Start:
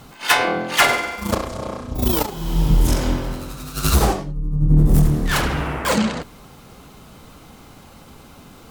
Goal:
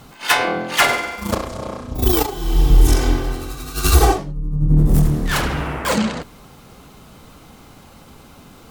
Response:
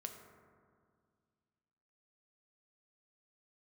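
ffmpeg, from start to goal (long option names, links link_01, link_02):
-filter_complex "[0:a]asettb=1/sr,asplit=3[link_01][link_02][link_03];[link_01]atrim=end=2.024[link_04];[link_02]atrim=start=2.02:end=4.18,asetpts=PTS-STARTPTS,afade=type=in:duration=0.004:curve=qsin,afade=type=out:start_time=2.156:duration=0.004:curve=qsin,aecho=1:1:2.6:0.91,atrim=end_sample=95256[link_05];[link_03]atrim=start=4.176[link_06];[link_04][link_05]acrossfade=duration=0.004:curve1=hsin:curve2=qsin[link_07];[link_07][link_06]acrossfade=duration=0.004:curve1=qsin:curve2=hsin"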